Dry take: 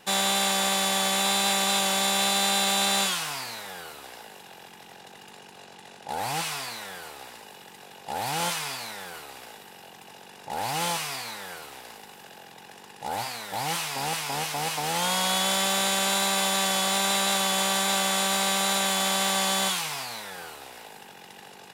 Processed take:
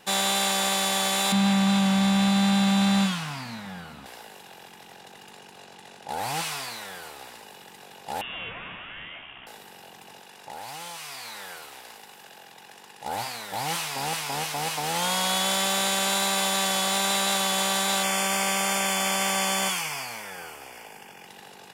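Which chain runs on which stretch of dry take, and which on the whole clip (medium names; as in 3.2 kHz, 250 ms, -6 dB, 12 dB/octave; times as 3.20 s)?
1.32–4.06 s: low-pass 2.6 kHz 6 dB/octave + resonant low shelf 290 Hz +9 dB, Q 3
8.21–9.47 s: bass shelf 150 Hz -7 dB + compression 2.5:1, threshold -34 dBFS + frequency inversion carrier 3.6 kHz
10.20–13.06 s: bass shelf 440 Hz -6.5 dB + compression 12:1, threshold -34 dBFS
18.03–21.27 s: Butterworth band-stop 3.9 kHz, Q 4.2 + peaking EQ 2.3 kHz +6.5 dB 0.2 oct
whole clip: none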